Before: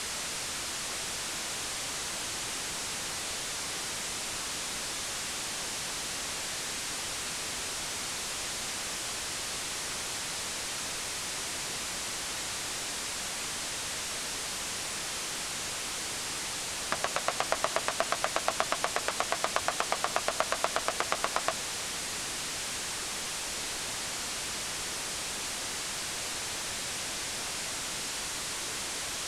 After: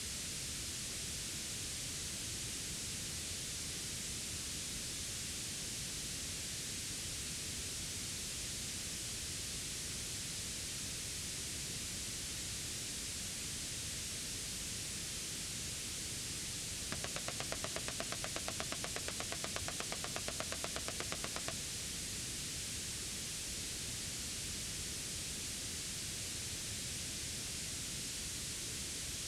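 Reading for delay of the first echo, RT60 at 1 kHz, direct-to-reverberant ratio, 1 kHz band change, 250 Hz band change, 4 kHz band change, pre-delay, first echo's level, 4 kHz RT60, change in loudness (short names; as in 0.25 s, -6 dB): none, none, none, -17.5 dB, -3.5 dB, -7.5 dB, none, none, none, -7.5 dB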